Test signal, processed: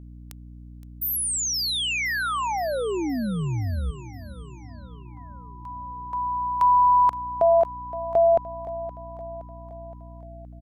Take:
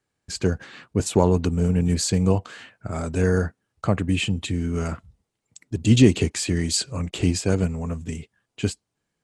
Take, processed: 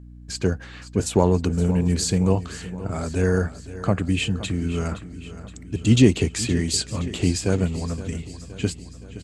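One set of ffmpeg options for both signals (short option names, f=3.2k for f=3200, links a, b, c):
-af "aecho=1:1:519|1038|1557|2076|2595|3114:0.178|0.103|0.0598|0.0347|0.0201|0.0117,aeval=exprs='val(0)+0.00891*(sin(2*PI*60*n/s)+sin(2*PI*2*60*n/s)/2+sin(2*PI*3*60*n/s)/3+sin(2*PI*4*60*n/s)/4+sin(2*PI*5*60*n/s)/5)':c=same"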